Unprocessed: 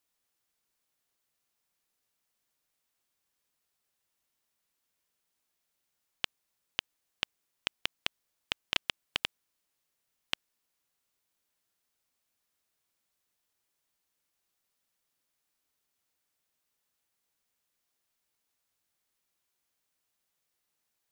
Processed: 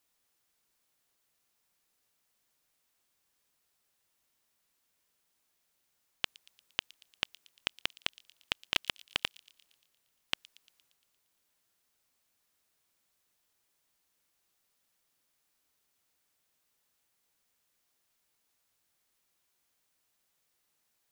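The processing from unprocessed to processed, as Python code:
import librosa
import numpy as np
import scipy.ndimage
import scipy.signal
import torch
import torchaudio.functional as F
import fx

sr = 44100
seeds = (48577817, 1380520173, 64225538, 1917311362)

y = fx.transient(x, sr, attack_db=-4, sustain_db=3)
y = fx.echo_wet_highpass(y, sr, ms=116, feedback_pct=59, hz=4600.0, wet_db=-15.5)
y = y * 10.0 ** (4.0 / 20.0)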